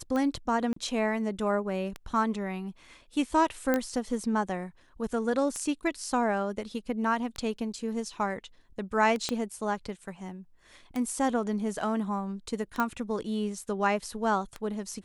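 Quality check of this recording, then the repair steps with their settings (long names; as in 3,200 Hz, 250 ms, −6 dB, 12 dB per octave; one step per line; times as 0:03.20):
scratch tick 33 1/3 rpm −20 dBFS
0:00.73–0:00.76: drop-out 34 ms
0:03.74: click −13 dBFS
0:09.29: click −15 dBFS
0:12.80: click −15 dBFS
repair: click removal
repair the gap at 0:00.73, 34 ms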